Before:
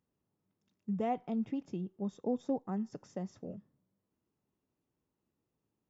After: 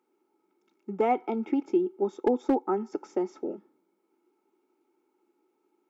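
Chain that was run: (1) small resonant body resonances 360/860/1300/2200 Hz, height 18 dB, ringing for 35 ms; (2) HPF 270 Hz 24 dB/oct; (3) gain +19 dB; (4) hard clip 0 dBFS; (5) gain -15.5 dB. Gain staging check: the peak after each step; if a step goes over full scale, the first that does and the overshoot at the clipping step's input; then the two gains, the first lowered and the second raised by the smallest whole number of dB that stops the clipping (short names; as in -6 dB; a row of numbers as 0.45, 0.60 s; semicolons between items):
-13.0, -15.0, +4.0, 0.0, -15.5 dBFS; step 3, 4.0 dB; step 3 +15 dB, step 5 -11.5 dB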